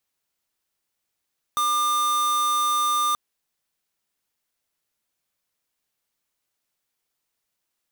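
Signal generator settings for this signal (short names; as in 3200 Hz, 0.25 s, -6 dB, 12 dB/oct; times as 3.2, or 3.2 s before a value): tone square 1200 Hz -22 dBFS 1.58 s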